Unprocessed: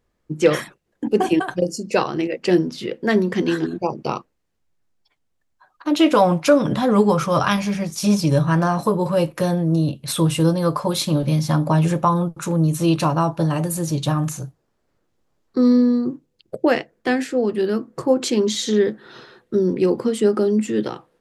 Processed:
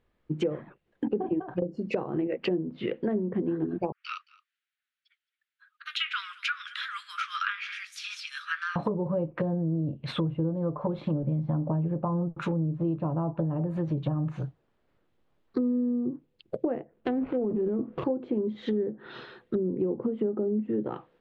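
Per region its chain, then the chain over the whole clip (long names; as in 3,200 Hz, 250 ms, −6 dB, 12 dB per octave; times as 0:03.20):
0:03.92–0:08.76: Butterworth high-pass 1,300 Hz 72 dB per octave + single-tap delay 220 ms −23 dB
0:16.93–0:18.04: running median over 25 samples + transient designer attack −2 dB, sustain +9 dB
whole clip: treble cut that deepens with the level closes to 600 Hz, closed at −17 dBFS; high shelf with overshoot 4,400 Hz −9.5 dB, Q 1.5; downward compressor, threshold −23 dBFS; level −2 dB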